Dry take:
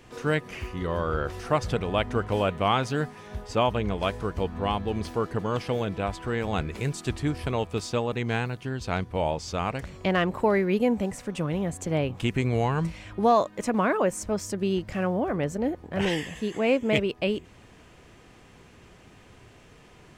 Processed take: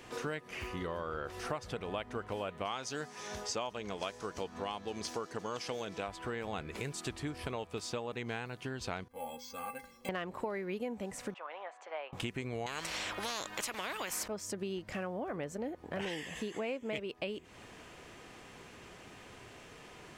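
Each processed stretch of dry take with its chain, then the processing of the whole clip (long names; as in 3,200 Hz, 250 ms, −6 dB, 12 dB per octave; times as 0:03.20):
0:02.65–0:06.07: high-pass filter 160 Hz 6 dB per octave + parametric band 6,100 Hz +12 dB 1 octave
0:09.08–0:10.09: stiff-string resonator 240 Hz, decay 0.24 s, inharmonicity 0.03 + bad sample-rate conversion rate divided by 4×, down none, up hold
0:11.34–0:12.13: high-pass filter 750 Hz 24 dB per octave + head-to-tape spacing loss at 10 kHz 40 dB
0:12.66–0:14.28: parametric band 9,400 Hz −4.5 dB 0.22 octaves + every bin compressed towards the loudest bin 4 to 1
whole clip: low-shelf EQ 200 Hz −10.5 dB; downward compressor 5 to 1, threshold −39 dBFS; level +2.5 dB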